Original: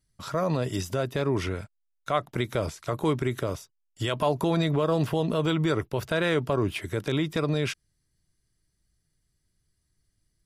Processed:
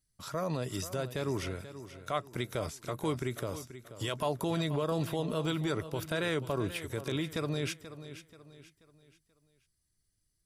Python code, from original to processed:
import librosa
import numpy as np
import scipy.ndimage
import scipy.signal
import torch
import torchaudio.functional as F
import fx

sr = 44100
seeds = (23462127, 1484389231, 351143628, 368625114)

y = fx.high_shelf(x, sr, hz=5500.0, db=9.0)
y = fx.echo_feedback(y, sr, ms=483, feedback_pct=38, wet_db=-13.0)
y = F.gain(torch.from_numpy(y), -7.5).numpy()